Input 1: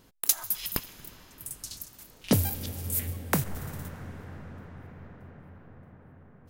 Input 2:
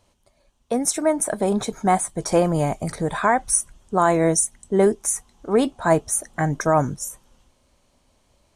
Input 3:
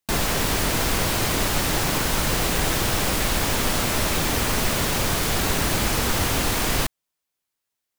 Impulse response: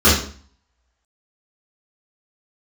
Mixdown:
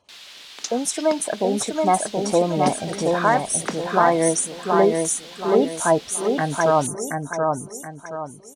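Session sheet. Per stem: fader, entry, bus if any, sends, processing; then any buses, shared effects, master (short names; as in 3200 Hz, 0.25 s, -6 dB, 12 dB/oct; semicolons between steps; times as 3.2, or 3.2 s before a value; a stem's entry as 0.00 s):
+0.5 dB, 0.35 s, no send, no echo send, elliptic band-pass 220–6200 Hz
+1.0 dB, 0.00 s, no send, echo send -3.5 dB, spectral gate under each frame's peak -25 dB strong; HPF 270 Hz 6 dB/oct; high shelf 7900 Hz -7.5 dB
-9.5 dB, 0.00 s, no send, no echo send, band-pass 3600 Hz, Q 2.1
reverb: off
echo: feedback echo 0.726 s, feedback 36%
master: dry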